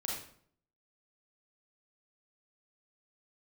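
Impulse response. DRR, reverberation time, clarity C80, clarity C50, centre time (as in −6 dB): −3.5 dB, 0.60 s, 5.5 dB, 1.0 dB, 50 ms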